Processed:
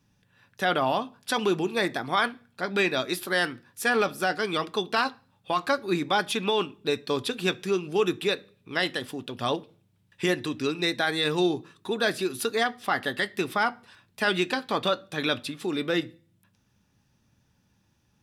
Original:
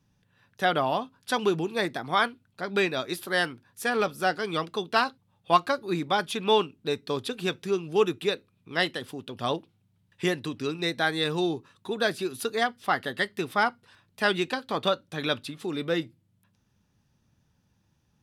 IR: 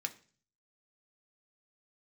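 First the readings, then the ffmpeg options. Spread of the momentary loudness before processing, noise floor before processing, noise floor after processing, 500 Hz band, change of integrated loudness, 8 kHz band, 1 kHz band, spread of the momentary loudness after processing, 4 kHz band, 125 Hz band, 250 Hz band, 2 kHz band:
7 LU, −70 dBFS, −69 dBFS, +0.5 dB, +0.5 dB, +3.5 dB, −1.0 dB, 5 LU, +1.5 dB, 0.0 dB, +2.0 dB, +1.5 dB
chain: -filter_complex "[0:a]alimiter=limit=-17dB:level=0:latency=1:release=23,asplit=2[link_01][link_02];[1:a]atrim=start_sample=2205[link_03];[link_02][link_03]afir=irnorm=-1:irlink=0,volume=-4.5dB[link_04];[link_01][link_04]amix=inputs=2:normalize=0"

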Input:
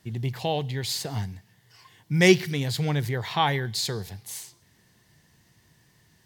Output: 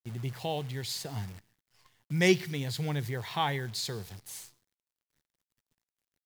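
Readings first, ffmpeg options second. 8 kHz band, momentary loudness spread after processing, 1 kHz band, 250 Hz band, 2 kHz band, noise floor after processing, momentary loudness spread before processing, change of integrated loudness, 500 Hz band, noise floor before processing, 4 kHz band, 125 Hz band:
−6.5 dB, 18 LU, −6.5 dB, −6.5 dB, −6.5 dB, below −85 dBFS, 18 LU, −6.0 dB, −6.5 dB, −63 dBFS, −6.5 dB, −6.5 dB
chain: -af "agate=range=-33dB:threshold=-51dB:ratio=3:detection=peak,acrusher=bits=8:dc=4:mix=0:aa=0.000001,volume=-6.5dB"

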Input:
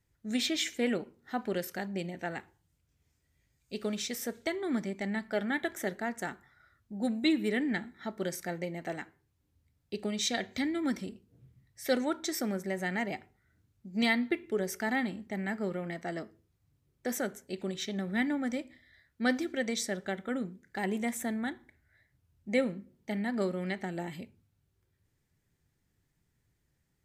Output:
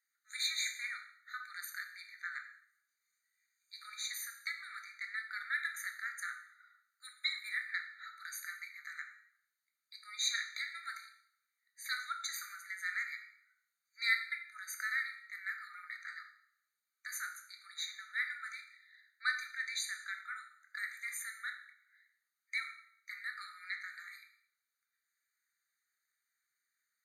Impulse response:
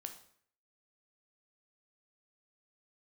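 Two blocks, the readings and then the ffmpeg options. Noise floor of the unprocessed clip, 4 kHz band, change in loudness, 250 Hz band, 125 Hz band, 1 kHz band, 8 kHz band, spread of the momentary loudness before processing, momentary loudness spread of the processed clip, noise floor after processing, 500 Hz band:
−77 dBFS, −2.0 dB, −6.0 dB, below −40 dB, below −40 dB, −9.0 dB, −2.5 dB, 10 LU, 15 LU, below −85 dBFS, below −40 dB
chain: -filter_complex "[0:a]bandreject=frequency=111.7:width_type=h:width=4,bandreject=frequency=223.4:width_type=h:width=4,bandreject=frequency=335.1:width_type=h:width=4,bandreject=frequency=446.8:width_type=h:width=4,bandreject=frequency=558.5:width_type=h:width=4,bandreject=frequency=670.2:width_type=h:width=4,bandreject=frequency=781.9:width_type=h:width=4,bandreject=frequency=893.6:width_type=h:width=4,bandreject=frequency=1005.3:width_type=h:width=4,bandreject=frequency=1117:width_type=h:width=4,bandreject=frequency=1228.7:width_type=h:width=4,bandreject=frequency=1340.4:width_type=h:width=4,bandreject=frequency=1452.1:width_type=h:width=4,bandreject=frequency=1563.8:width_type=h:width=4,bandreject=frequency=1675.5:width_type=h:width=4,bandreject=frequency=1787.2:width_type=h:width=4,bandreject=frequency=1898.9:width_type=h:width=4,bandreject=frequency=2010.6:width_type=h:width=4,bandreject=frequency=2122.3:width_type=h:width=4,bandreject=frequency=2234:width_type=h:width=4,bandreject=frequency=2345.7:width_type=h:width=4,bandreject=frequency=2457.4:width_type=h:width=4,bandreject=frequency=2569.1:width_type=h:width=4,bandreject=frequency=2680.8:width_type=h:width=4,bandreject=frequency=2792.5:width_type=h:width=4,bandreject=frequency=2904.2:width_type=h:width=4,bandreject=frequency=3015.9:width_type=h:width=4,bandreject=frequency=3127.6:width_type=h:width=4,bandreject=frequency=3239.3:width_type=h:width=4,bandreject=frequency=3351:width_type=h:width=4,bandreject=frequency=3462.7:width_type=h:width=4,bandreject=frequency=3574.4:width_type=h:width=4,bandreject=frequency=3686.1:width_type=h:width=4,bandreject=frequency=3797.8:width_type=h:width=4,bandreject=frequency=3909.5:width_type=h:width=4[link_01];[1:a]atrim=start_sample=2205,asetrate=37044,aresample=44100[link_02];[link_01][link_02]afir=irnorm=-1:irlink=0,afftfilt=real='re*eq(mod(floor(b*sr/1024/1200),2),1)':imag='im*eq(mod(floor(b*sr/1024/1200),2),1)':win_size=1024:overlap=0.75,volume=3.5dB"

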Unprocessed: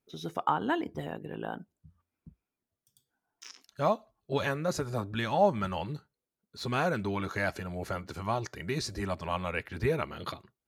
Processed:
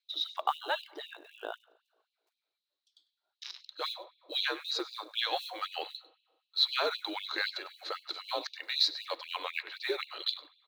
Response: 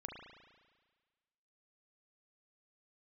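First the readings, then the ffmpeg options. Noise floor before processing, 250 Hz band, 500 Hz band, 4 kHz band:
below −85 dBFS, −14.5 dB, −8.5 dB, +12.0 dB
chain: -filter_complex "[0:a]equalizer=frequency=62:width=5:gain=-11,afreqshift=-77,lowpass=frequency=4000:width_type=q:width=9.9,acrusher=bits=8:mode=log:mix=0:aa=0.000001,aecho=1:1:99:0.119,asplit=2[link_01][link_02];[1:a]atrim=start_sample=2205[link_03];[link_02][link_03]afir=irnorm=-1:irlink=0,volume=-14.5dB[link_04];[link_01][link_04]amix=inputs=2:normalize=0,afftfilt=real='re*gte(b*sr/1024,260*pow(2500/260,0.5+0.5*sin(2*PI*3.9*pts/sr)))':imag='im*gte(b*sr/1024,260*pow(2500/260,0.5+0.5*sin(2*PI*3.9*pts/sr)))':win_size=1024:overlap=0.75,volume=-2.5dB"

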